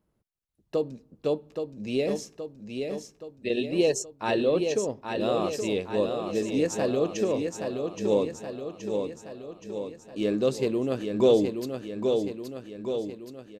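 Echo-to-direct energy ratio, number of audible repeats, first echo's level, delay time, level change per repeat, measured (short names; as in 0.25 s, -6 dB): -4.0 dB, 7, -5.5 dB, 0.823 s, -5.0 dB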